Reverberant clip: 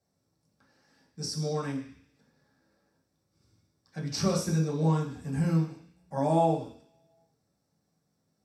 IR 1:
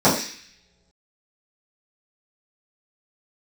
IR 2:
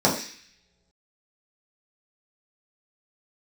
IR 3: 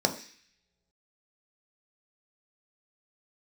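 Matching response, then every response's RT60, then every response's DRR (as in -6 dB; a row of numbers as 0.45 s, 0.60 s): 2; no single decay rate, no single decay rate, no single decay rate; -12.0 dB, -5.5 dB, 4.0 dB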